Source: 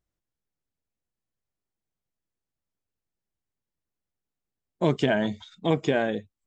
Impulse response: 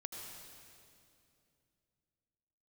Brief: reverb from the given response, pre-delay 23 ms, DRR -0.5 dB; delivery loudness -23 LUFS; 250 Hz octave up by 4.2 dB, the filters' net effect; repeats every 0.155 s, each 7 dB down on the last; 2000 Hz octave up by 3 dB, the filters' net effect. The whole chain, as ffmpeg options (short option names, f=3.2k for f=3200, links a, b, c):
-filter_complex "[0:a]equalizer=f=250:t=o:g=5.5,equalizer=f=2k:t=o:g=4,aecho=1:1:155|310|465|620|775:0.447|0.201|0.0905|0.0407|0.0183,asplit=2[a][b];[1:a]atrim=start_sample=2205,adelay=23[c];[b][c]afir=irnorm=-1:irlink=0,volume=2.5dB[d];[a][d]amix=inputs=2:normalize=0,volume=-3.5dB"